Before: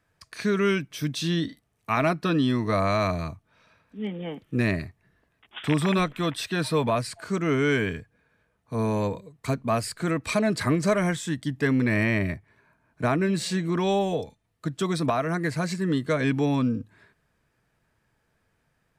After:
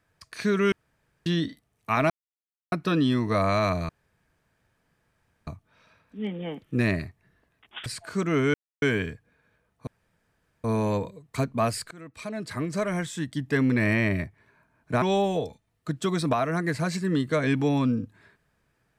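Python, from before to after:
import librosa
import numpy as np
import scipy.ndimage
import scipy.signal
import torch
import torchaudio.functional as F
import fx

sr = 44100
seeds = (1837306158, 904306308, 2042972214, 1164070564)

y = fx.edit(x, sr, fx.room_tone_fill(start_s=0.72, length_s=0.54),
    fx.insert_silence(at_s=2.1, length_s=0.62),
    fx.insert_room_tone(at_s=3.27, length_s=1.58),
    fx.cut(start_s=5.66, length_s=1.35),
    fx.insert_silence(at_s=7.69, length_s=0.28),
    fx.insert_room_tone(at_s=8.74, length_s=0.77),
    fx.fade_in_from(start_s=10.01, length_s=1.73, floor_db=-23.5),
    fx.cut(start_s=13.12, length_s=0.67), tone=tone)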